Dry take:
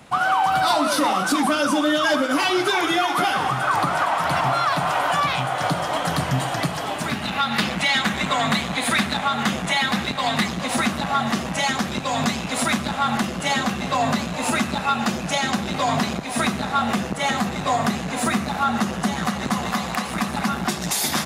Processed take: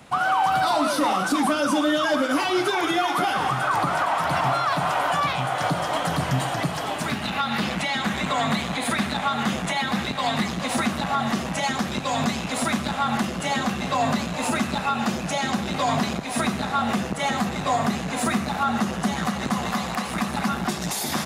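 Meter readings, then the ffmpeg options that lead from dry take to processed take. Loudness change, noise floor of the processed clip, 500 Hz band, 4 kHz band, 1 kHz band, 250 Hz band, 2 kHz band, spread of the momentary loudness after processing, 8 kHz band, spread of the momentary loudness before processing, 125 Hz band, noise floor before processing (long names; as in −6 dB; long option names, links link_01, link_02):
−2.0 dB, −30 dBFS, −1.5 dB, −4.0 dB, −2.0 dB, −1.0 dB, −3.5 dB, 4 LU, −3.5 dB, 5 LU, −1.0 dB, −29 dBFS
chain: -filter_complex "[0:a]acrossover=split=1100[link_01][link_02];[link_02]alimiter=limit=-18.5dB:level=0:latency=1:release=65[link_03];[link_01][link_03]amix=inputs=2:normalize=0,acontrast=26,volume=-6dB"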